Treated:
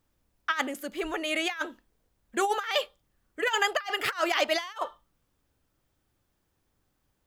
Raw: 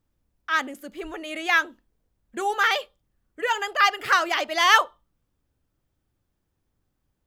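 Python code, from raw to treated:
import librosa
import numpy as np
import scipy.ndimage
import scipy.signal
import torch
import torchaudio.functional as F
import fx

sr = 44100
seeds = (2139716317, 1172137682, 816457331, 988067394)

y = fx.low_shelf(x, sr, hz=340.0, db=-7.0)
y = fx.over_compress(y, sr, threshold_db=-27.0, ratio=-0.5)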